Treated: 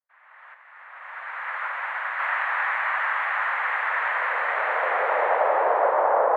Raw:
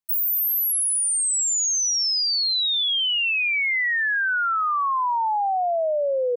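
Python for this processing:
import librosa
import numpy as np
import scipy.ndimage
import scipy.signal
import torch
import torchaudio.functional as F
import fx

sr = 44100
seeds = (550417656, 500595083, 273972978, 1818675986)

y = fx.noise_vocoder(x, sr, seeds[0], bands=2)
y = scipy.signal.sosfilt(scipy.signal.ellip(3, 1.0, 50, [520.0, 1900.0], 'bandpass', fs=sr, output='sos'), y)
y = fx.upward_expand(y, sr, threshold_db=-41.0, expansion=1.5, at=(0.53, 2.19), fade=0.02)
y = F.gain(torch.from_numpy(y), 5.5).numpy()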